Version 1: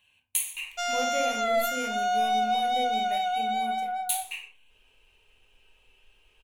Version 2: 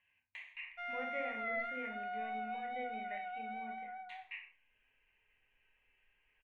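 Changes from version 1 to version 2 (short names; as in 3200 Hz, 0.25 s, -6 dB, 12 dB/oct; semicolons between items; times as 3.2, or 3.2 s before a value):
background -5.5 dB; master: add ladder low-pass 2100 Hz, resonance 75%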